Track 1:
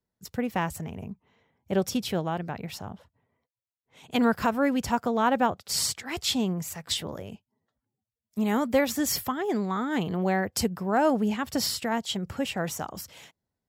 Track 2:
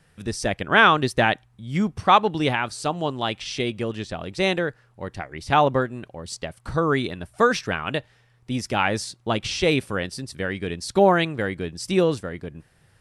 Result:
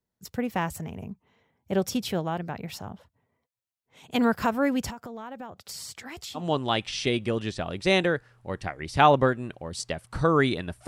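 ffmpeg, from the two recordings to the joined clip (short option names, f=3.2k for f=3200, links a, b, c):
-filter_complex "[0:a]asettb=1/sr,asplit=3[a][b][c];[a]atrim=end=4.904[d];[b]atrim=start=4.9:end=6.44,asetpts=PTS-STARTPTS,afade=t=in:d=0.004:c=qsin,afade=t=out:st=1.536:d=0.004:c=qsin,acompressor=threshold=-36dB:ratio=8:attack=3.2:release=140:knee=1:detection=peak[e];[c]atrim=start=6.436[f];[d][e]acrossfade=d=0.004:c1=hsin:c2=qsin[g];[g][f]acrossfade=d=0.004:c1=qsin:c2=hsin,apad=whole_dur=10.87,atrim=end=10.87,atrim=end=6.44,asetpts=PTS-STARTPTS[h];[1:a]atrim=start=2.87:end=7.4,asetpts=PTS-STARTPTS[i];[h][i]acrossfade=d=0.1:c1=tri:c2=tri"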